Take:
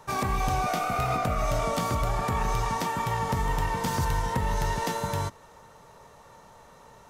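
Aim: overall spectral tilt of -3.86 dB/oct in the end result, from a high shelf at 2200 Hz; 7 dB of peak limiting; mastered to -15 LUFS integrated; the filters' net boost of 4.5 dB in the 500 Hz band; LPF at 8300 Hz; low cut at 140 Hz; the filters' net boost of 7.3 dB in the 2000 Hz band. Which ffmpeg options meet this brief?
-af "highpass=140,lowpass=8.3k,equalizer=f=500:t=o:g=5,equalizer=f=2k:t=o:g=7,highshelf=f=2.2k:g=3,volume=12.5dB,alimiter=limit=-6dB:level=0:latency=1"

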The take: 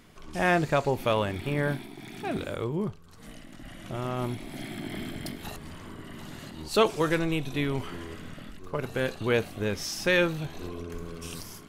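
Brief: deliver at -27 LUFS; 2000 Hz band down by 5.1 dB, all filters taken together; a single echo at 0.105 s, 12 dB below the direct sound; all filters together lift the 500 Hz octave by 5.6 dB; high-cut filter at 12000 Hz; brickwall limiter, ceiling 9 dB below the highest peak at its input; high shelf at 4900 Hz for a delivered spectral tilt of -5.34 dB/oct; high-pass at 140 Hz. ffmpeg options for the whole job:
-af "highpass=140,lowpass=12k,equalizer=f=500:t=o:g=7,equalizer=f=2k:t=o:g=-7.5,highshelf=f=4.9k:g=3,alimiter=limit=-16.5dB:level=0:latency=1,aecho=1:1:105:0.251,volume=2.5dB"

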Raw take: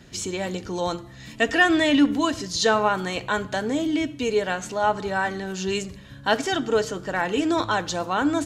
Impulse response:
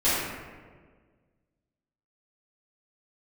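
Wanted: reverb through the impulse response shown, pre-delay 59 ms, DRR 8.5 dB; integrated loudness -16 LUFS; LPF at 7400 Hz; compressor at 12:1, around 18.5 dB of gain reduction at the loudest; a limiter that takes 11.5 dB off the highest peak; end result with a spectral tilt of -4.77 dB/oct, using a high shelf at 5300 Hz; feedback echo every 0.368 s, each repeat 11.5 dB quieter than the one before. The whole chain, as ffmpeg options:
-filter_complex "[0:a]lowpass=7.4k,highshelf=f=5.3k:g=-7,acompressor=threshold=-33dB:ratio=12,alimiter=level_in=8dB:limit=-24dB:level=0:latency=1,volume=-8dB,aecho=1:1:368|736|1104:0.266|0.0718|0.0194,asplit=2[a][b];[1:a]atrim=start_sample=2205,adelay=59[c];[b][c]afir=irnorm=-1:irlink=0,volume=-24dB[d];[a][d]amix=inputs=2:normalize=0,volume=24dB"

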